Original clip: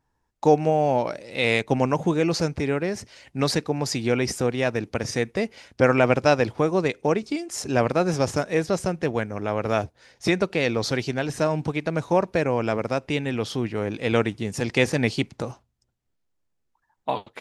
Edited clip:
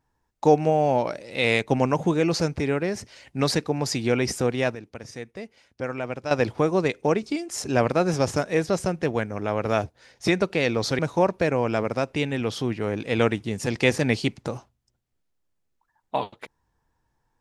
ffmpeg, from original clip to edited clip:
-filter_complex "[0:a]asplit=4[a][b][c][d];[a]atrim=end=4.75,asetpts=PTS-STARTPTS,afade=t=out:st=4.53:d=0.22:c=log:silence=0.251189[e];[b]atrim=start=4.75:end=6.31,asetpts=PTS-STARTPTS,volume=-12dB[f];[c]atrim=start=6.31:end=10.992,asetpts=PTS-STARTPTS,afade=t=in:d=0.22:c=log:silence=0.251189[g];[d]atrim=start=11.928[h];[e][f][g]concat=n=3:v=0:a=1[i];[i][h]acrossfade=d=0.004:c1=hsin:c2=hsin"

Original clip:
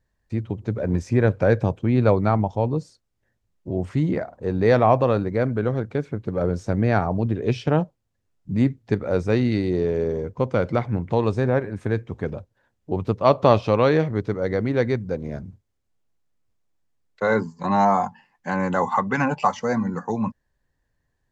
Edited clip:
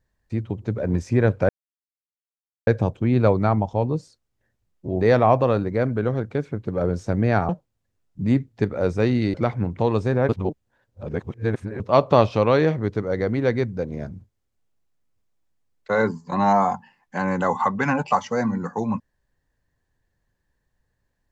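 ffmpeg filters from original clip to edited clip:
-filter_complex "[0:a]asplit=7[a][b][c][d][e][f][g];[a]atrim=end=1.49,asetpts=PTS-STARTPTS,afade=t=out:st=1.486:d=0.004:c=hsin,apad=pad_dur=1.18[h];[b]atrim=start=1.49:end=3.832,asetpts=PTS-STARTPTS,afade=t=in:d=0.004:c=hsin[i];[c]atrim=start=4.608:end=7.092[j];[d]atrim=start=7.788:end=9.642[k];[e]atrim=start=10.658:end=11.612[l];[f]atrim=start=11.608:end=13.122,asetpts=PTS-STARTPTS,areverse[m];[g]atrim=start=13.118[n];[h][i]concat=n=2:v=0:a=1[o];[o][j]acrossfade=d=0.004:c1=hsin:c2=hsin[p];[p][k]acrossfade=d=0.004:c1=hsin:c2=hsin[q];[q][l]acrossfade=d=0.004:c1=hsin:c2=hsin[r];[r][m]acrossfade=d=0.004:c1=hsin:c2=hsin[s];[s][n]acrossfade=d=0.004:c1=hsin:c2=hsin"

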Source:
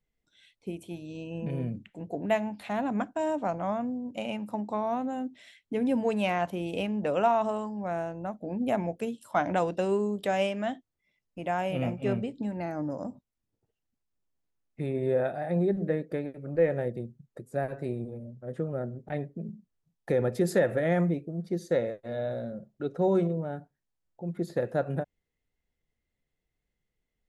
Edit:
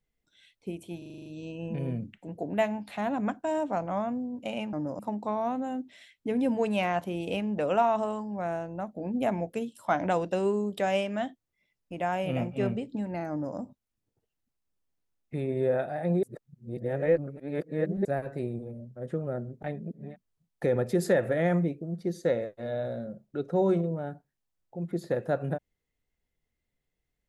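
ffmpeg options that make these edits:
-filter_complex "[0:a]asplit=14[a][b][c][d][e][f][g][h][i][j][k][l][m][n];[a]atrim=end=1.022[o];[b]atrim=start=0.978:end=1.022[p];[c]atrim=start=0.978:end=1.022[q];[d]atrim=start=0.978:end=1.022[r];[e]atrim=start=0.978:end=1.022[s];[f]atrim=start=0.978:end=1.022[t];[g]atrim=start=0.978:end=1.022[u];[h]atrim=start=0.978:end=4.452[v];[i]atrim=start=12.758:end=13.022[w];[j]atrim=start=4.448:end=15.692[x];[k]atrim=start=15.688:end=17.512,asetpts=PTS-STARTPTS,areverse[y];[l]atrim=start=17.508:end=19.35[z];[m]atrim=start=19.11:end=19.63,asetpts=PTS-STARTPTS,areverse[aa];[n]atrim=start=19.39[ab];[o][p]acrossfade=d=0.004:c1=hsin:c2=hsin[ac];[ac][q]acrossfade=d=0.004:c1=hsin:c2=hsin[ad];[ad][r]acrossfade=d=0.004:c1=hsin:c2=hsin[ae];[ae][s]acrossfade=d=0.004:c1=hsin:c2=hsin[af];[af][t]acrossfade=d=0.004:c1=hsin:c2=hsin[ag];[ag][u]acrossfade=d=0.004:c1=hsin:c2=hsin[ah];[ah][v]acrossfade=d=0.004:c1=hsin:c2=hsin[ai];[ai][w]acrossfade=d=0.004:c1=hsin:c2=hsin[aj];[aj][x]acrossfade=d=0.004:c1=hsin:c2=hsin[ak];[ak][y]acrossfade=d=0.004:c1=hsin:c2=hsin[al];[al][z]acrossfade=d=0.004:c1=hsin:c2=hsin[am];[am][aa]acrossfade=d=0.24:c1=tri:c2=tri[an];[an][ab]acrossfade=d=0.24:c1=tri:c2=tri"

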